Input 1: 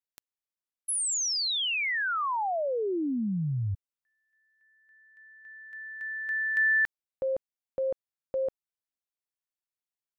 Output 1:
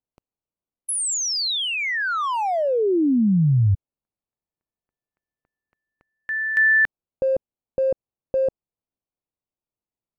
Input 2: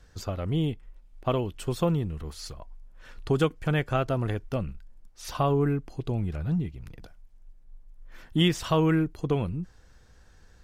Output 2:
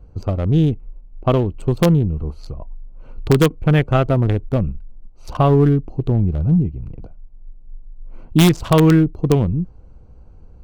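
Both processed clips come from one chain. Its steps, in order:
adaptive Wiener filter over 25 samples
low-shelf EQ 390 Hz +5 dB
in parallel at −3.5 dB: wrap-around overflow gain 11 dB
on the sum: level +3.5 dB

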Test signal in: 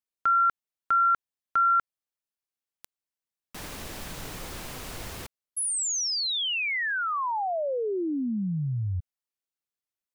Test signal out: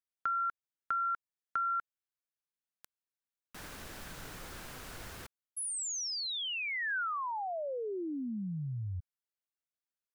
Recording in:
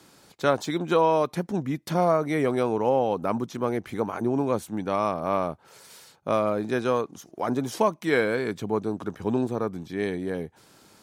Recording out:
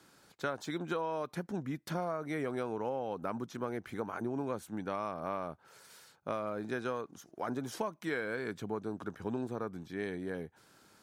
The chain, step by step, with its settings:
parametric band 1,500 Hz +6 dB 0.53 octaves
downward compressor, threshold −23 dBFS
level −8.5 dB

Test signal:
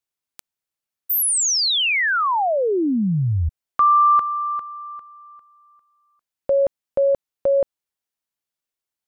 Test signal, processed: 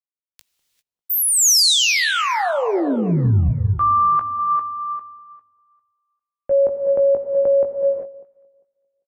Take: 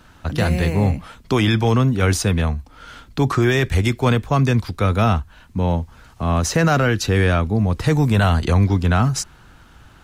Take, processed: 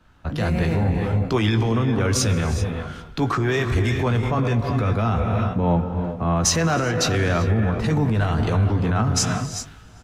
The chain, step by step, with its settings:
reverb whose tail is shaped and stops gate 420 ms rising, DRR 7.5 dB
in parallel at +2 dB: downward compressor, threshold −32 dBFS
on the sum: high-shelf EQ 4,700 Hz −9.5 dB
double-tracking delay 18 ms −8.5 dB
on a send: delay that swaps between a low-pass and a high-pass 199 ms, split 1,100 Hz, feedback 61%, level −13 dB
on the sum: dynamic equaliser 6,100 Hz, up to +4 dB, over −39 dBFS, Q 1.8
brickwall limiter −12.5 dBFS
multiband upward and downward expander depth 70%

